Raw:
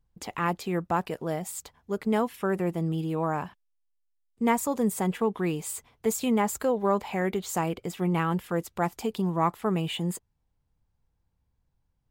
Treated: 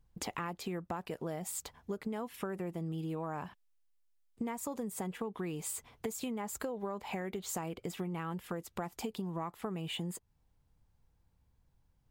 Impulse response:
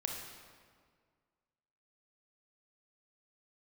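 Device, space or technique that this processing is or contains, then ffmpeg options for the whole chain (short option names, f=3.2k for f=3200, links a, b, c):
serial compression, leveller first: -af "acompressor=threshold=-26dB:ratio=2.5,acompressor=threshold=-39dB:ratio=6,volume=3dB"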